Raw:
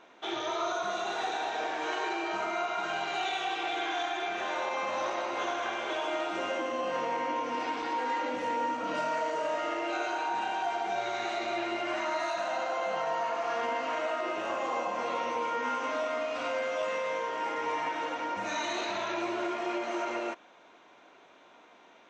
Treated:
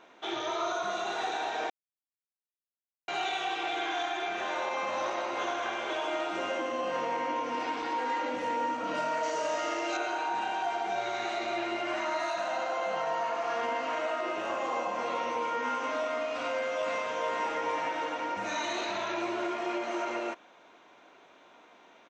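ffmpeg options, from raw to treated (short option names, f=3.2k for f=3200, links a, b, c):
-filter_complex "[0:a]asettb=1/sr,asplit=3[a][b][c];[a]atrim=end=9.234[d];[b]atrim=start=9.23:end=9.97,asetpts=PTS-STARTPTS,afade=t=in:d=0.004:c=qsin,afade=t=out:st=0.736:d=0.004:c=qsin,equalizer=f=6k:t=o:w=1.1:g=10[e];[c]atrim=start=9.966[f];[d][e]acrossfade=d=0.004:c1=hsin:c2=qsin[g];[g][f]acrossfade=d=0.004:c1=qsin:c2=hsin,asplit=2[h][i];[i]afade=t=in:st=16.41:d=0.01,afade=t=out:st=17.12:d=0.01,aecho=0:1:450|900|1350|1800|2250|2700|3150:0.668344|0.334172|0.167086|0.083543|0.0417715|0.0208857|0.0104429[j];[h][j]amix=inputs=2:normalize=0,asplit=3[k][l][m];[k]atrim=end=1.7,asetpts=PTS-STARTPTS,afade=t=out:st=1.696:d=0.004:c=hsin[n];[l]atrim=start=1.7:end=3.08,asetpts=PTS-STARTPTS,volume=0[o];[m]atrim=start=3.08,asetpts=PTS-STARTPTS,afade=t=in:d=0.004:c=hsin[p];[n][o][p]concat=n=3:v=0:a=1"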